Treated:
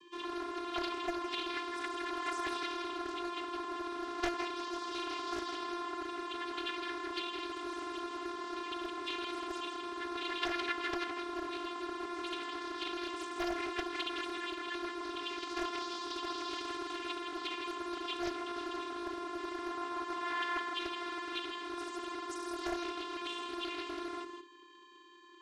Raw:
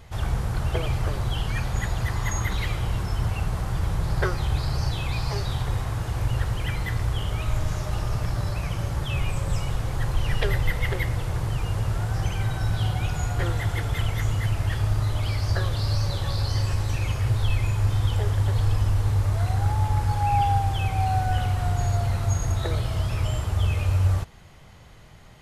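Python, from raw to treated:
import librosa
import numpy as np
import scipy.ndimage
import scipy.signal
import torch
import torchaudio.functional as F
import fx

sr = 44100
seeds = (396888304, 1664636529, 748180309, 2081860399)

p1 = fx.lower_of_two(x, sr, delay_ms=1.0)
p2 = fx.spec_gate(p1, sr, threshold_db=-10, keep='weak')
p3 = fx.peak_eq(p2, sr, hz=3000.0, db=12.0, octaves=0.26)
p4 = fx.vocoder(p3, sr, bands=16, carrier='square', carrier_hz=348.0)
p5 = 10.0 ** (-32.5 / 20.0) * np.tanh(p4 / 10.0 ** (-32.5 / 20.0))
p6 = p4 + (p5 * librosa.db_to_amplitude(-11.0))
p7 = p6 + 10.0 ** (-5.5 / 20.0) * np.pad(p6, (int(162 * sr / 1000.0), 0))[:len(p6)]
p8 = fx.doppler_dist(p7, sr, depth_ms=0.69)
y = p8 * librosa.db_to_amplitude(-6.0)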